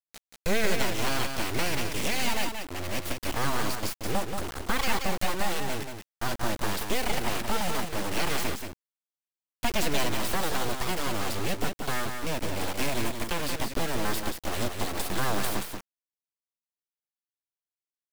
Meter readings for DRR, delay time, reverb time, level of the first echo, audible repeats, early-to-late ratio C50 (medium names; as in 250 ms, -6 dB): no reverb, 180 ms, no reverb, -6.0 dB, 1, no reverb